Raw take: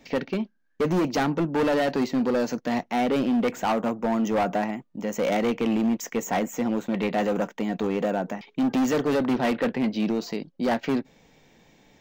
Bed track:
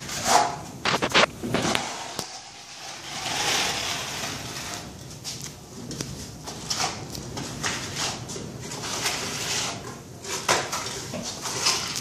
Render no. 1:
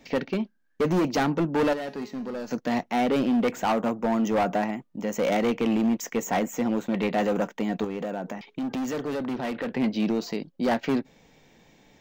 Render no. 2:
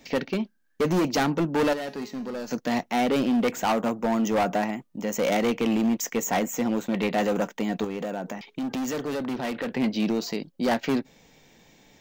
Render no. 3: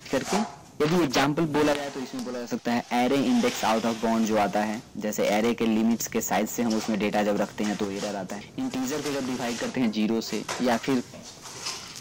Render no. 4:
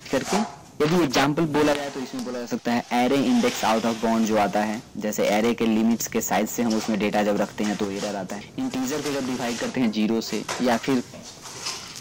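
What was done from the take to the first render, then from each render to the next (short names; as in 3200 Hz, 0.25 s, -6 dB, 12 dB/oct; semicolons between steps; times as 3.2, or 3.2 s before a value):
1.73–2.51 resonator 210 Hz, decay 0.65 s, mix 70%; 7.84–9.73 compressor 5:1, threshold -28 dBFS
high shelf 3800 Hz +7 dB
add bed track -10.5 dB
gain +2.5 dB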